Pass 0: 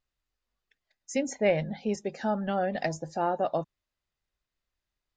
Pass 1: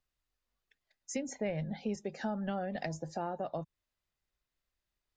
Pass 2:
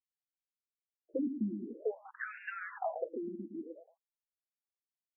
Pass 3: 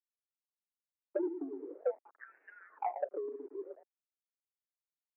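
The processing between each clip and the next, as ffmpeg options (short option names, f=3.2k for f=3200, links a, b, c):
-filter_complex "[0:a]acrossover=split=180[a][b];[b]acompressor=threshold=-34dB:ratio=4[c];[a][c]amix=inputs=2:normalize=0,volume=-1.5dB"
-filter_complex "[0:a]aeval=exprs='val(0)*gte(abs(val(0)),0.00708)':c=same,asplit=2[a][b];[b]adelay=113,lowpass=f=1k:p=1,volume=-8dB,asplit=2[c][d];[d]adelay=113,lowpass=f=1k:p=1,volume=0.26,asplit=2[e][f];[f]adelay=113,lowpass=f=1k:p=1,volume=0.26[g];[c][e][g]amix=inputs=3:normalize=0[h];[a][h]amix=inputs=2:normalize=0,afftfilt=real='re*between(b*sr/1024,250*pow(2000/250,0.5+0.5*sin(2*PI*0.51*pts/sr))/1.41,250*pow(2000/250,0.5+0.5*sin(2*PI*0.51*pts/sr))*1.41)':imag='im*between(b*sr/1024,250*pow(2000/250,0.5+0.5*sin(2*PI*0.51*pts/sr))/1.41,250*pow(2000/250,0.5+0.5*sin(2*PI*0.51*pts/sr))*1.41)':win_size=1024:overlap=0.75,volume=7.5dB"
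-af "aeval=exprs='val(0)*gte(abs(val(0)),0.00237)':c=same,adynamicsmooth=sensitivity=1:basefreq=510,highpass=f=280:t=q:w=0.5412,highpass=f=280:t=q:w=1.307,lowpass=f=2.3k:t=q:w=0.5176,lowpass=f=2.3k:t=q:w=0.7071,lowpass=f=2.3k:t=q:w=1.932,afreqshift=67,volume=3dB"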